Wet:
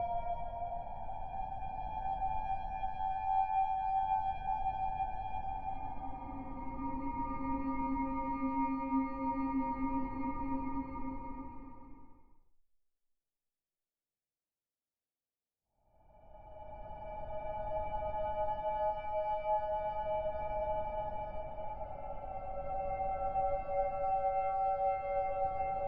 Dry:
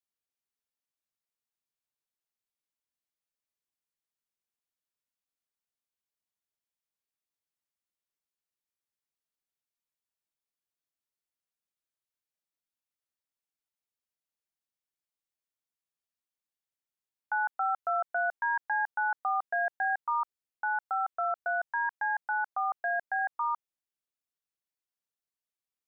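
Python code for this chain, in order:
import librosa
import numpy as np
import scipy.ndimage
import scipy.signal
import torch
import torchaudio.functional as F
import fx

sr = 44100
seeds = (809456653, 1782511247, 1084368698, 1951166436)

y = fx.lower_of_two(x, sr, delay_ms=0.32)
y = fx.paulstretch(y, sr, seeds[0], factor=19.0, window_s=0.25, from_s=19.69)
y = scipy.signal.sosfilt(scipy.signal.cheby1(2, 1.0, 630.0, 'lowpass', fs=sr, output='sos'), y)
y = y * librosa.db_to_amplitude(2.0)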